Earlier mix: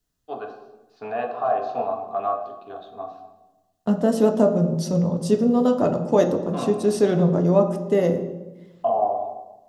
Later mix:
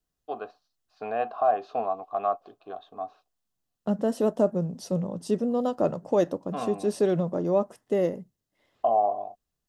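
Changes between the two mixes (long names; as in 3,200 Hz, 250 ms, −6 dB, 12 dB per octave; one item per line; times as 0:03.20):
second voice −5.0 dB
reverb: off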